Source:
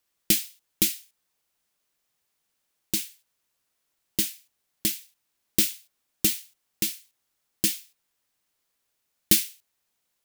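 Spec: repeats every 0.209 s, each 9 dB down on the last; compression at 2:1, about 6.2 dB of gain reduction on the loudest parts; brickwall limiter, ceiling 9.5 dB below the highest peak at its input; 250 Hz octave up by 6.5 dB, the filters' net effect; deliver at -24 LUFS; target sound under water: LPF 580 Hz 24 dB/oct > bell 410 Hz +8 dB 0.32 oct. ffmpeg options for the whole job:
-af "equalizer=f=250:t=o:g=8,acompressor=threshold=-25dB:ratio=2,alimiter=limit=-14.5dB:level=0:latency=1,lowpass=f=580:w=0.5412,lowpass=f=580:w=1.3066,equalizer=f=410:t=o:w=0.32:g=8,aecho=1:1:209|418|627|836:0.355|0.124|0.0435|0.0152,volume=19.5dB"

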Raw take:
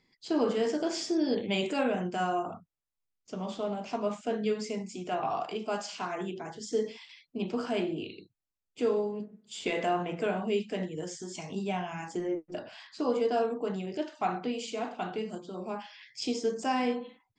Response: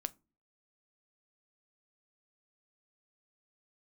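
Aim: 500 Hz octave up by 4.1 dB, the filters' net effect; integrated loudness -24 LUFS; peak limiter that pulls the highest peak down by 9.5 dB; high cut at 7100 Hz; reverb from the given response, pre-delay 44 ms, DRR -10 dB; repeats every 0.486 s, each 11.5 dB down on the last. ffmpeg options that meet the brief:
-filter_complex "[0:a]lowpass=7.1k,equalizer=f=500:t=o:g=5,alimiter=limit=-23dB:level=0:latency=1,aecho=1:1:486|972|1458:0.266|0.0718|0.0194,asplit=2[a][b];[1:a]atrim=start_sample=2205,adelay=44[c];[b][c]afir=irnorm=-1:irlink=0,volume=11dB[d];[a][d]amix=inputs=2:normalize=0,volume=-1.5dB"

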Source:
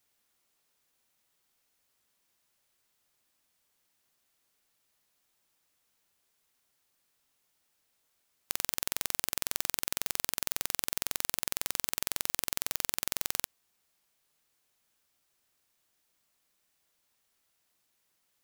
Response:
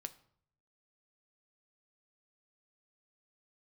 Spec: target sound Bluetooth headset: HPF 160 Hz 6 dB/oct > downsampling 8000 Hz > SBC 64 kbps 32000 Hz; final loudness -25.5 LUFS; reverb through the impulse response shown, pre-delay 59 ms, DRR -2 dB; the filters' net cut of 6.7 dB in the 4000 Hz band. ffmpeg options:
-filter_complex "[0:a]equalizer=f=4k:t=o:g=-9,asplit=2[a][b];[1:a]atrim=start_sample=2205,adelay=59[c];[b][c]afir=irnorm=-1:irlink=0,volume=5.5dB[d];[a][d]amix=inputs=2:normalize=0,highpass=f=160:p=1,aresample=8000,aresample=44100,volume=15dB" -ar 32000 -c:a sbc -b:a 64k

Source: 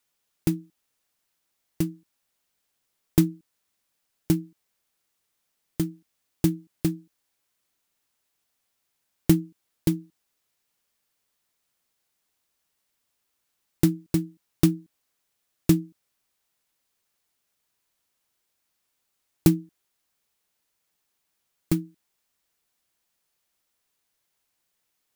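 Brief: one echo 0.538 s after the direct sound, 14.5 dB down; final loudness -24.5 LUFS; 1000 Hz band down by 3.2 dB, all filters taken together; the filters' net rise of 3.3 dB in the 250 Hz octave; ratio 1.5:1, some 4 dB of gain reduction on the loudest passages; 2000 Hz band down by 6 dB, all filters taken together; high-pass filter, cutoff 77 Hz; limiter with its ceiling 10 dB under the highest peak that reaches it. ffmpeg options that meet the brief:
-af "highpass=77,equalizer=f=250:t=o:g=6,equalizer=f=1k:t=o:g=-3,equalizer=f=2k:t=o:g=-7,acompressor=threshold=-22dB:ratio=1.5,alimiter=limit=-15.5dB:level=0:latency=1,aecho=1:1:538:0.188,volume=9.5dB"

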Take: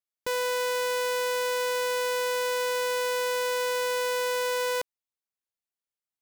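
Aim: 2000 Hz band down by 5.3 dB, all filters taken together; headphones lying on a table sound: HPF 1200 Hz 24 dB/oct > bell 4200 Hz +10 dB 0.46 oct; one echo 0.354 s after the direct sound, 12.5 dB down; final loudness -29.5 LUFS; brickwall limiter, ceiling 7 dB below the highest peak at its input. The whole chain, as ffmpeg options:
-af "equalizer=f=2k:t=o:g=-7.5,alimiter=level_in=6.5dB:limit=-24dB:level=0:latency=1,volume=-6.5dB,highpass=f=1.2k:w=0.5412,highpass=f=1.2k:w=1.3066,equalizer=f=4.2k:t=o:w=0.46:g=10,aecho=1:1:354:0.237,volume=9dB"

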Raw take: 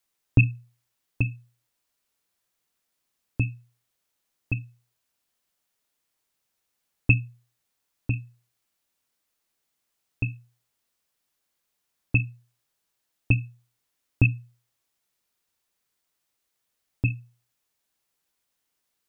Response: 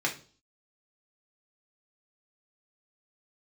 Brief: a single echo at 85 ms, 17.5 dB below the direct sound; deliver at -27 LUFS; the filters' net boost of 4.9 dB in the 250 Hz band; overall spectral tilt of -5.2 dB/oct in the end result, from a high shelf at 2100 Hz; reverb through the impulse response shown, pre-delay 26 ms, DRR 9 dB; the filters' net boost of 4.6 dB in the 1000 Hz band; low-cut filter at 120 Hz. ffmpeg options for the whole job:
-filter_complex "[0:a]highpass=120,equalizer=f=250:t=o:g=6.5,equalizer=f=1k:t=o:g=6.5,highshelf=f=2.1k:g=-4.5,aecho=1:1:85:0.133,asplit=2[a][b];[1:a]atrim=start_sample=2205,adelay=26[c];[b][c]afir=irnorm=-1:irlink=0,volume=-17.5dB[d];[a][d]amix=inputs=2:normalize=0,volume=1dB"

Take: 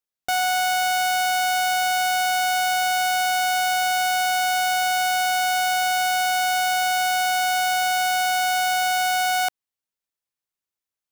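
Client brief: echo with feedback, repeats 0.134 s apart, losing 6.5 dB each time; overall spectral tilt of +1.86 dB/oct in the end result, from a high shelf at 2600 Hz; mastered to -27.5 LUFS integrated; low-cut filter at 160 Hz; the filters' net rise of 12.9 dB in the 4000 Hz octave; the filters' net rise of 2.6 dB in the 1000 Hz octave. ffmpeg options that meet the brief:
-af "highpass=160,equalizer=f=1k:t=o:g=3,highshelf=f=2.6k:g=9,equalizer=f=4k:t=o:g=9,aecho=1:1:134|268|402|536|670|804:0.473|0.222|0.105|0.0491|0.0231|0.0109,volume=-15.5dB"

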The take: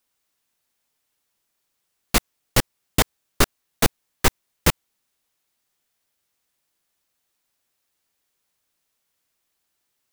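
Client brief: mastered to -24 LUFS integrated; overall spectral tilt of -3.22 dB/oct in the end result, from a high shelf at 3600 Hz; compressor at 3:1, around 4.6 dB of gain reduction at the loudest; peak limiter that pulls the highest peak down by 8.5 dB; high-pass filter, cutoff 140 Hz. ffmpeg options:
-af "highpass=140,highshelf=f=3.6k:g=-4,acompressor=threshold=-21dB:ratio=3,volume=11dB,alimiter=limit=-5dB:level=0:latency=1"

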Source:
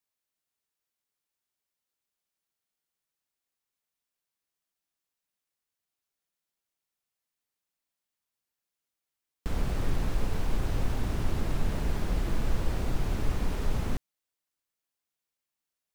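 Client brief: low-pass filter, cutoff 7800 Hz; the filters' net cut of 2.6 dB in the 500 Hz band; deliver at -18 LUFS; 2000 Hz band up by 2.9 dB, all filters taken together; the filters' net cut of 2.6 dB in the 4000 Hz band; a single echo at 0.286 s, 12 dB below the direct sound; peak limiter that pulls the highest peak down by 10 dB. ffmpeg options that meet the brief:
-af "lowpass=7.8k,equalizer=f=500:t=o:g=-3.5,equalizer=f=2k:t=o:g=5,equalizer=f=4k:t=o:g=-5,alimiter=level_in=1dB:limit=-24dB:level=0:latency=1,volume=-1dB,aecho=1:1:286:0.251,volume=19.5dB"

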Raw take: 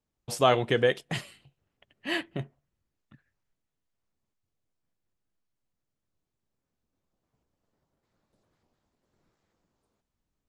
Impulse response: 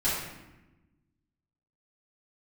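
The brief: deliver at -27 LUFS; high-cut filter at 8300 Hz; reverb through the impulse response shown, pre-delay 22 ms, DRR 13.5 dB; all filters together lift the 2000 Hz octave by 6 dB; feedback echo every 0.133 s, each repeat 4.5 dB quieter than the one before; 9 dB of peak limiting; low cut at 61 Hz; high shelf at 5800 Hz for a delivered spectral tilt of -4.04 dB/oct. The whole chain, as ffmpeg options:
-filter_complex "[0:a]highpass=61,lowpass=8.3k,equalizer=f=2k:t=o:g=6.5,highshelf=f=5.8k:g=5,alimiter=limit=-14dB:level=0:latency=1,aecho=1:1:133|266|399|532|665|798|931|1064|1197:0.596|0.357|0.214|0.129|0.0772|0.0463|0.0278|0.0167|0.01,asplit=2[a][b];[1:a]atrim=start_sample=2205,adelay=22[c];[b][c]afir=irnorm=-1:irlink=0,volume=-24dB[d];[a][d]amix=inputs=2:normalize=0,volume=1.5dB"

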